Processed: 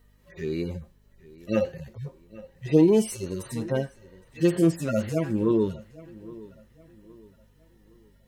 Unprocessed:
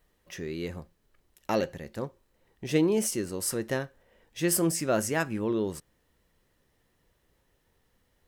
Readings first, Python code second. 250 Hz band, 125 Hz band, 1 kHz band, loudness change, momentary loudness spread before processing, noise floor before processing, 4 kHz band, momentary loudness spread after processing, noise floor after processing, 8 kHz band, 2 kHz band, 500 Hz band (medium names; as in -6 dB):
+6.0 dB, +6.5 dB, -4.0 dB, +4.0 dB, 18 LU, -72 dBFS, -4.5 dB, 22 LU, -60 dBFS, -9.5 dB, -5.0 dB, +4.5 dB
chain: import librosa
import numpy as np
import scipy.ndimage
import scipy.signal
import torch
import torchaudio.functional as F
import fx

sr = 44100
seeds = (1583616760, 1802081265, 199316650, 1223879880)

y = fx.hpss_only(x, sr, part='harmonic')
y = fx.echo_filtered(y, sr, ms=816, feedback_pct=37, hz=4700.0, wet_db=-20)
y = fx.add_hum(y, sr, base_hz=50, snr_db=33)
y = F.gain(torch.from_numpy(y), 6.5).numpy()